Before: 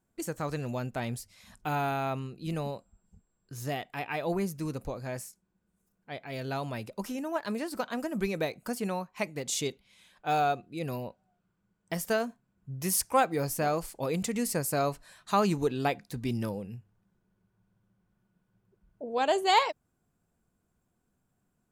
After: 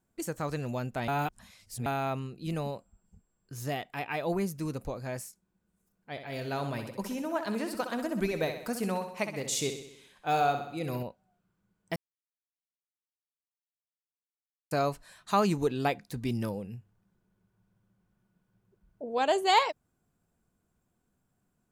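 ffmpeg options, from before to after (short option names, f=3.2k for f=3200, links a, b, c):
-filter_complex "[0:a]asettb=1/sr,asplit=3[a][b][c];[a]atrim=end=2.754[d];[b]atrim=start=2.75:end=3.57,asetpts=PTS-STARTPTS,afade=t=in:d=0.004:c=qsin,afade=t=out:st=0.816:d=0.004:c=qsin,bandreject=f=3.9k:w=9.3[e];[c]atrim=start=3.566[f];[d][e]acrossfade=d=0.004:c1=hsin:c2=qsin[g];[g][f]acrossfade=d=0.004:c1=qsin:c2=hsin,asettb=1/sr,asplit=3[h][i][j];[h]atrim=end=6.114[k];[i]atrim=start=6.11:end=11.03,asetpts=PTS-STARTPTS,afade=t=in:d=0.004:c=qsin,afade=t=out:st=4.916:d=0.004:c=qsin,aecho=1:1:64|128|192|256|320|384|448:0.376|0.207|0.114|0.0625|0.0344|0.0189|0.0104,atrim=end_sample=216972[l];[j]atrim=start=11.026[m];[k][l]acrossfade=d=0.004:c1=hsin:c2=qsin[n];[n][m]acrossfade=d=0.004:c1=qsin:c2=hsin,asplit=5[o][p][q][r][s];[o]atrim=end=1.082[t];[p]atrim=start=1.078:end=1.862,asetpts=PTS-STARTPTS,areverse[u];[q]atrim=start=1.858:end=11.96,asetpts=PTS-STARTPTS,afade=t=out:st=10.098:d=0.004:c=hsin[v];[r]atrim=start=11.96:end=14.71,asetpts=PTS-STARTPTS,volume=0[w];[s]atrim=start=14.71,asetpts=PTS-STARTPTS,afade=t=in:d=0.004:c=hsin[x];[t][u]acrossfade=d=0.004:c1=hsin:c2=hsin[y];[v][w][x]concat=n=3:v=0:a=1[z];[y][z]acrossfade=d=0.004:c1=hsin:c2=hsin"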